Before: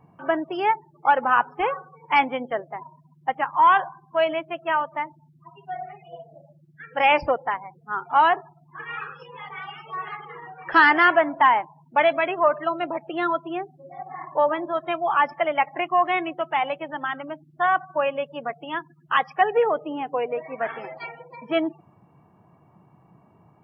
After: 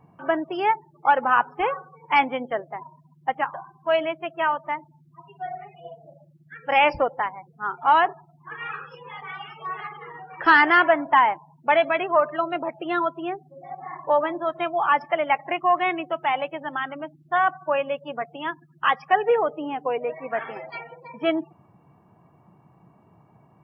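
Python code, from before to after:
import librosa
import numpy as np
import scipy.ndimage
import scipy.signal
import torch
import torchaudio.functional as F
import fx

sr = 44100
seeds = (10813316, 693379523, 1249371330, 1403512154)

y = fx.edit(x, sr, fx.cut(start_s=3.54, length_s=0.28), tone=tone)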